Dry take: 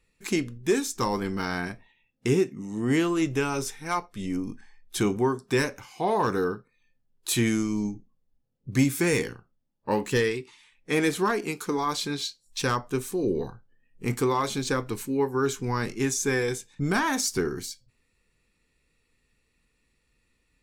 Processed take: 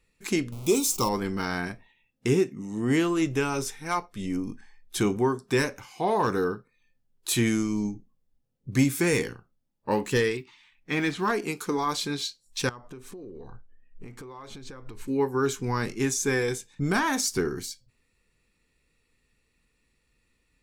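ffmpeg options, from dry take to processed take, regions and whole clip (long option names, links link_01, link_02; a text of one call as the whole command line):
ffmpeg -i in.wav -filter_complex "[0:a]asettb=1/sr,asplit=3[link_01][link_02][link_03];[link_01]atrim=end=0.524[link_04];[link_02]atrim=start=0.52:end=1.09,asetpts=PTS-STARTPTS,afade=type=in:duration=0.004:curve=qsin,afade=type=out:start_time=0.566:duration=0.004:curve=qsin,aeval=exprs='val(0)+0.5*0.015*sgn(val(0))':channel_layout=same,asuperstop=centerf=1700:order=4:qfactor=1.8,highshelf=frequency=7900:gain=11.5[link_05];[link_03]atrim=start=1.086[link_06];[link_04][link_05]acrossfade=duration=0.004:curve1=hsin:curve2=qsin[link_07];[link_07][link_06]acrossfade=duration=0.004:curve1=qsin:curve2=hsin,asettb=1/sr,asplit=3[link_08][link_09][link_10];[link_08]atrim=end=10.374[link_11];[link_09]atrim=start=10.37:end=11.28,asetpts=PTS-STARTPTS,afade=type=in:duration=0.004:curve=qsin,afade=type=out:start_time=0.906:duration=0.004:curve=qsin,lowpass=4600,equalizer=frequency=470:width=2.2:gain=-9,acrusher=bits=9:mode=log:mix=0:aa=0.000001[link_12];[link_10]atrim=start=11.276[link_13];[link_11][link_12]acrossfade=duration=0.004:curve1=hsin:curve2=qsin[link_14];[link_14][link_13]acrossfade=duration=0.004:curve1=qsin:curve2=hsin,asettb=1/sr,asplit=3[link_15][link_16][link_17];[link_15]atrim=end=12.694[link_18];[link_16]atrim=start=12.69:end=15.08,asetpts=PTS-STARTPTS,afade=type=in:duration=0.004:curve=qsin,afade=type=out:start_time=2.386:duration=0.004:curve=qsin,lowpass=frequency=2600:poles=1,acompressor=threshold=-38dB:ratio=16:attack=3.2:release=140:knee=1:detection=peak,asubboost=boost=7.5:cutoff=71[link_19];[link_17]atrim=start=15.076[link_20];[link_18][link_19]acrossfade=duration=0.004:curve1=hsin:curve2=qsin[link_21];[link_21][link_20]acrossfade=duration=0.004:curve1=qsin:curve2=hsin" out.wav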